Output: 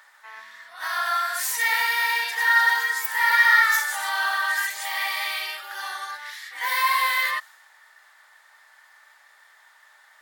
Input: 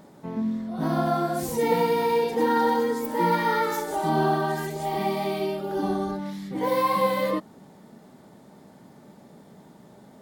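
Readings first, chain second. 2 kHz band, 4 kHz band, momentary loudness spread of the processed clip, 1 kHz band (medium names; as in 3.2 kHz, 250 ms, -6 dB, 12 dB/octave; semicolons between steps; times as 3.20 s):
+15.0 dB, +10.0 dB, 15 LU, -0.5 dB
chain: high-pass 1.3 kHz 24 dB/octave; peaking EQ 1.8 kHz +10 dB 0.25 oct; in parallel at -9.5 dB: saturation -32 dBFS, distortion -7 dB; on the sum: tape noise reduction on one side only decoder only; trim +8 dB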